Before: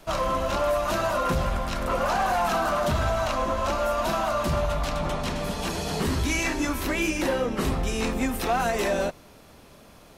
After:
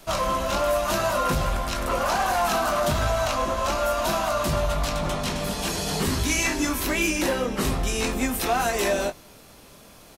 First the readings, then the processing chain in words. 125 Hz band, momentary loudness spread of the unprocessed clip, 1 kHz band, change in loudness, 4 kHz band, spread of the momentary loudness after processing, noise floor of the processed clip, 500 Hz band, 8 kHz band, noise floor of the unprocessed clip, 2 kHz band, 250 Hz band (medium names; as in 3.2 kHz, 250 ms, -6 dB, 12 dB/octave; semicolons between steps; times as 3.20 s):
+0.5 dB, 4 LU, +1.0 dB, +1.5 dB, +4.0 dB, 4 LU, -49 dBFS, +1.0 dB, +6.5 dB, -51 dBFS, +2.0 dB, +0.5 dB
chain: treble shelf 3.8 kHz +7.5 dB; doubling 20 ms -9 dB